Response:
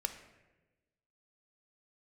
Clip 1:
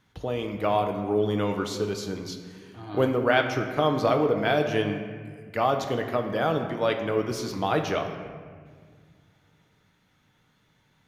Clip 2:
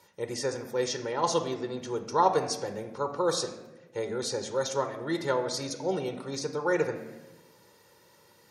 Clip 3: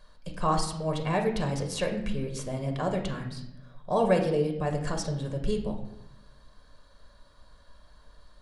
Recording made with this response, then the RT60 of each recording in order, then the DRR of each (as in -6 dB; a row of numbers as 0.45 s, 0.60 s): 2; 1.8 s, 1.1 s, 0.85 s; 3.5 dB, 7.0 dB, 3.0 dB